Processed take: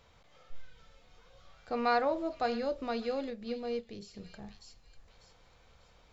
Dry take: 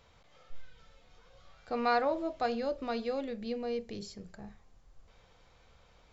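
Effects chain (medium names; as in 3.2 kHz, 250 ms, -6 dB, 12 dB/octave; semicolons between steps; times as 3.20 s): feedback echo behind a high-pass 595 ms, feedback 34%, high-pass 2.8 kHz, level -7 dB; 3.30–4.14 s: upward expansion 1.5:1, over -48 dBFS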